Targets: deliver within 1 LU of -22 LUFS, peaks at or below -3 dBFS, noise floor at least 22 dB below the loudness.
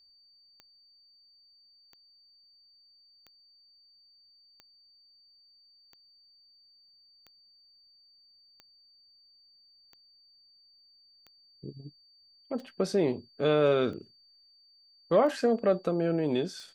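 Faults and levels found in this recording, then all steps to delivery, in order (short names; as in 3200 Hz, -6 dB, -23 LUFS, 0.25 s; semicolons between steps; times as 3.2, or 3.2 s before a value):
clicks 13; steady tone 4600 Hz; tone level -59 dBFS; loudness -28.0 LUFS; peak -13.5 dBFS; loudness target -22.0 LUFS
-> de-click; notch 4600 Hz, Q 30; gain +6 dB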